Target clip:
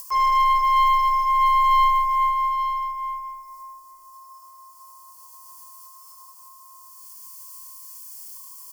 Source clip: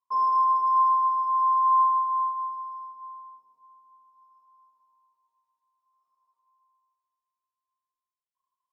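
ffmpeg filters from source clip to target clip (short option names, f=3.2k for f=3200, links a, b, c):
-filter_complex "[0:a]acrossover=split=2700[a][b];[b]acompressor=threshold=-59dB:ratio=4:attack=1:release=60[c];[a][c]amix=inputs=2:normalize=0,highshelf=f=2.6k:g=8,acompressor=mode=upward:threshold=-41dB:ratio=2.5,aexciter=amount=5.5:drive=6.3:freq=4.1k,aeval=exprs='(tanh(8.91*val(0)+0.4)-tanh(0.4))/8.91':c=same,acrusher=bits=8:mode=log:mix=0:aa=0.000001,afreqshift=14,asuperstop=centerf=3800:order=20:qfactor=5.1,aecho=1:1:869:0.237,volume=5.5dB"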